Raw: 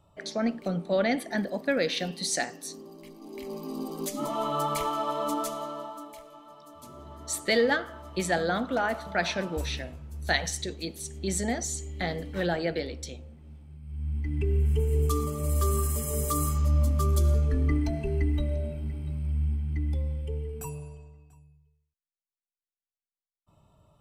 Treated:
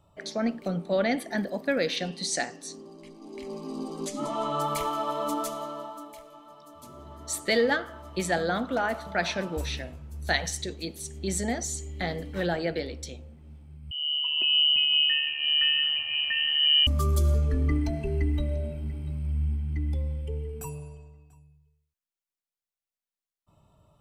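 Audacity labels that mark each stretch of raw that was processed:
1.960000	4.610000	low-pass filter 9,300 Hz 24 dB per octave
13.910000	16.870000	voice inversion scrambler carrier 3,000 Hz

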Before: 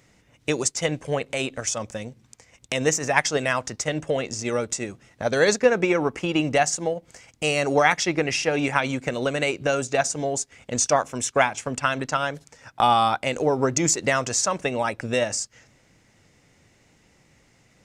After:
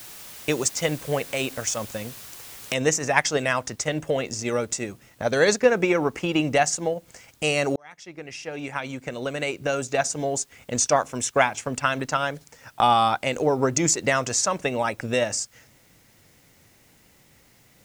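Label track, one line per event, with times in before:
2.740000	2.740000	noise floor change −42 dB −61 dB
7.760000	10.320000	fade in

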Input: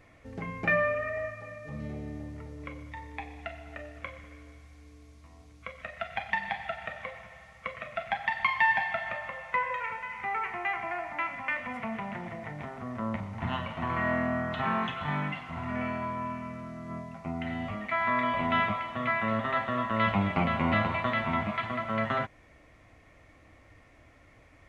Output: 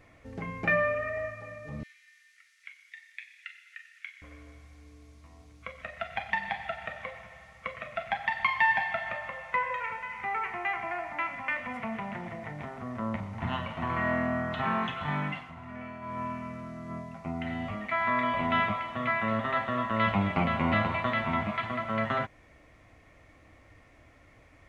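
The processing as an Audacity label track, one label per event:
1.830000	4.220000	Butterworth high-pass 1,600 Hz 48 dB per octave
15.360000	16.200000	duck −9 dB, fades 0.19 s

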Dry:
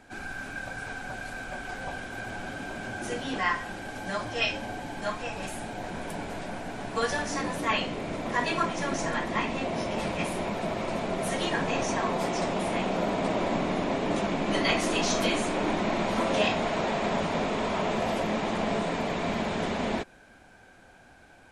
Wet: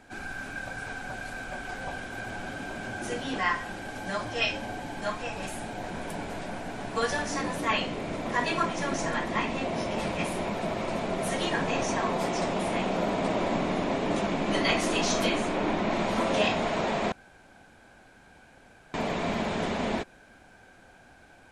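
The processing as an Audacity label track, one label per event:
15.290000	15.910000	high-shelf EQ 7,800 Hz −11.5 dB
17.120000	18.940000	fill with room tone

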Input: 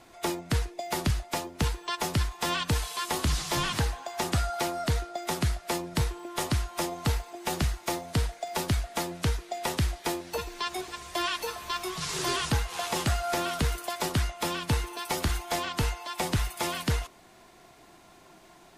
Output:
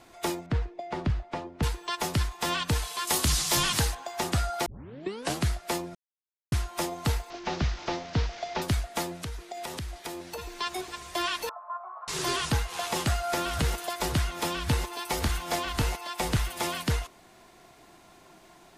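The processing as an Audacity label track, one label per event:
0.460000	1.630000	head-to-tape spacing loss at 10 kHz 29 dB
3.070000	3.950000	high-shelf EQ 3,900 Hz +10.5 dB
4.660000	4.660000	tape start 0.78 s
5.950000	6.520000	silence
7.300000	8.620000	linear delta modulator 32 kbit/s, step −36 dBFS
9.160000	10.590000	downward compressor, threshold −33 dBFS
11.490000	12.080000	elliptic band-pass filter 610–1,300 Hz, stop band 80 dB
12.790000	16.610000	delay that plays each chunk backwards 548 ms, level −9 dB

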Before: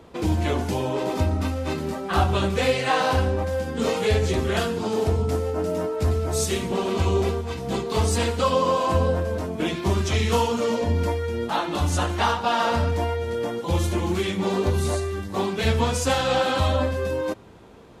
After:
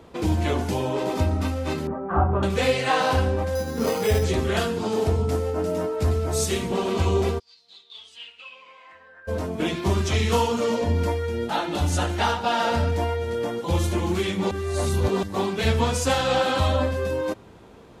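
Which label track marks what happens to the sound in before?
1.870000	2.430000	low-pass filter 1,400 Hz 24 dB per octave
3.550000	4.240000	bad sample-rate conversion rate divided by 8×, down filtered, up hold
7.380000	9.270000	resonant band-pass 4,900 Hz → 1,600 Hz, Q 12
11.320000	12.980000	notch filter 1,100 Hz, Q 5.1
14.510000	15.230000	reverse

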